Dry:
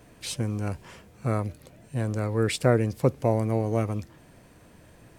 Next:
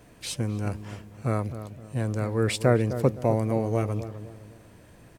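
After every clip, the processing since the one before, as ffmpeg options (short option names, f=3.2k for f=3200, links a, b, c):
-filter_complex "[0:a]asplit=2[a][b];[b]adelay=257,lowpass=f=1.1k:p=1,volume=-10.5dB,asplit=2[c][d];[d]adelay=257,lowpass=f=1.1k:p=1,volume=0.39,asplit=2[e][f];[f]adelay=257,lowpass=f=1.1k:p=1,volume=0.39,asplit=2[g][h];[h]adelay=257,lowpass=f=1.1k:p=1,volume=0.39[i];[a][c][e][g][i]amix=inputs=5:normalize=0"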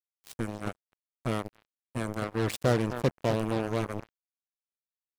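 -af "acrusher=bits=3:mix=0:aa=0.5,volume=-4.5dB"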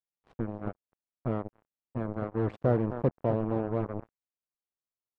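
-af "lowpass=1k"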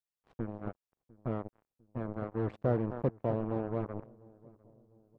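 -filter_complex "[0:a]asplit=2[a][b];[b]adelay=701,lowpass=f=820:p=1,volume=-22.5dB,asplit=2[c][d];[d]adelay=701,lowpass=f=820:p=1,volume=0.49,asplit=2[e][f];[f]adelay=701,lowpass=f=820:p=1,volume=0.49[g];[a][c][e][g]amix=inputs=4:normalize=0,volume=-4dB"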